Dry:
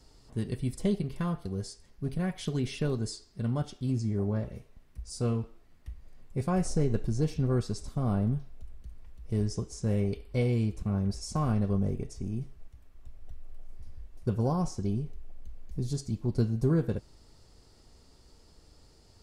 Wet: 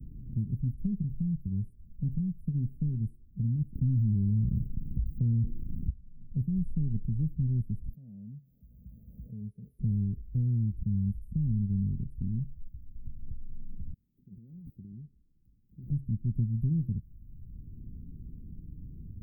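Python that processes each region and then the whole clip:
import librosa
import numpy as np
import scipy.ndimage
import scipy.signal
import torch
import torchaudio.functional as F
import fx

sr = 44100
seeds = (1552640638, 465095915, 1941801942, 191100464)

y = fx.chain(x, sr, fx.leveller(passes=2),
    fx.env_flatten(amount_pct=70), at=(3.75, 5.9))
y = fx.chain(y, sr, fx.highpass(hz=660.0, slope=12),
    fx.fixed_phaser(hz=1700.0, stages=8),
    fx.pre_swell(db_per_s=22.0), at=(7.93, 9.79))
y = fx.chain(y, sr, fx.over_compress(threshold_db=-30.0, ratio=-0.5),
    fx.differentiator(),
    fx.resample_linear(factor=4), at=(13.93, 15.9))
y = scipy.signal.sosfilt(scipy.signal.cheby2(4, 70, [820.0, 6500.0], 'bandstop', fs=sr, output='sos'), y)
y = fx.band_squash(y, sr, depth_pct=70)
y = y * librosa.db_to_amplitude(1.0)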